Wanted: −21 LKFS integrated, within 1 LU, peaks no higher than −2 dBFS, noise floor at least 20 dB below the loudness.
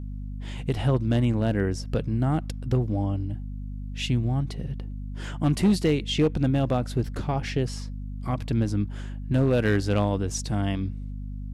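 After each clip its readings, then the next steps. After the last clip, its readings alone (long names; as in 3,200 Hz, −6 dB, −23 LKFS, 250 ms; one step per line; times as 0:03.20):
share of clipped samples 0.5%; peaks flattened at −14.5 dBFS; mains hum 50 Hz; hum harmonics up to 250 Hz; level of the hum −31 dBFS; integrated loudness −26.5 LKFS; sample peak −14.5 dBFS; target loudness −21.0 LKFS
→ clipped peaks rebuilt −14.5 dBFS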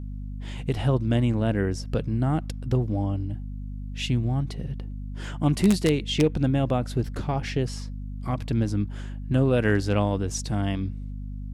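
share of clipped samples 0.0%; mains hum 50 Hz; hum harmonics up to 250 Hz; level of the hum −31 dBFS
→ mains-hum notches 50/100/150/200/250 Hz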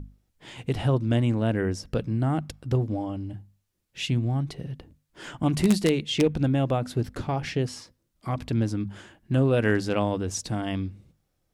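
mains hum none found; integrated loudness −26.5 LKFS; sample peak −5.5 dBFS; target loudness −21.0 LKFS
→ level +5.5 dB
brickwall limiter −2 dBFS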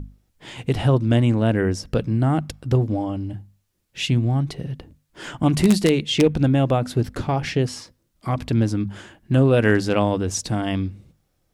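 integrated loudness −21.0 LKFS; sample peak −2.0 dBFS; background noise floor −69 dBFS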